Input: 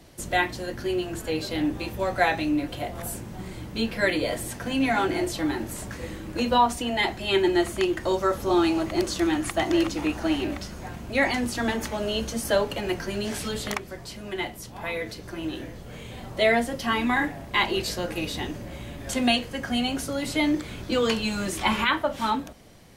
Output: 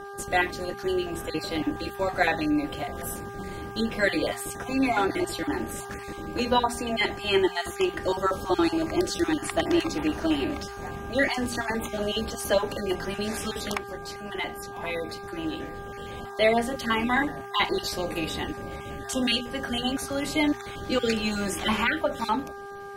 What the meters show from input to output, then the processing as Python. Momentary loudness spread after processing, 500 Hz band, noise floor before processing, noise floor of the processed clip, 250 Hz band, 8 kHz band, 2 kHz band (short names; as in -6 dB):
11 LU, -0.5 dB, -41 dBFS, -39 dBFS, -1.5 dB, -1.0 dB, -1.0 dB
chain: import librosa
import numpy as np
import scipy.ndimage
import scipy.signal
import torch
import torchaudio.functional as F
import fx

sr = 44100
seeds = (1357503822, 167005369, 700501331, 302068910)

y = fx.spec_dropout(x, sr, seeds[0], share_pct=21)
y = fx.hum_notches(y, sr, base_hz=60, count=4)
y = fx.dmg_buzz(y, sr, base_hz=400.0, harmonics=4, level_db=-40.0, tilt_db=-3, odd_only=False)